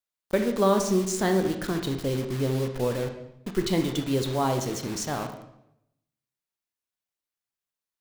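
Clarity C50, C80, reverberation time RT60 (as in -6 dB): 7.5 dB, 10.5 dB, 0.80 s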